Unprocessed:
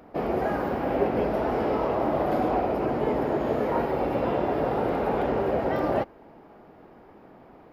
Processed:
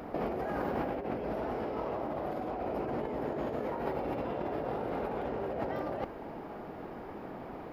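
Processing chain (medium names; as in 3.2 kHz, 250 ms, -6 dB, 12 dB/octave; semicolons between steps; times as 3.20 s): compressor with a negative ratio -34 dBFS, ratio -1; trim -1 dB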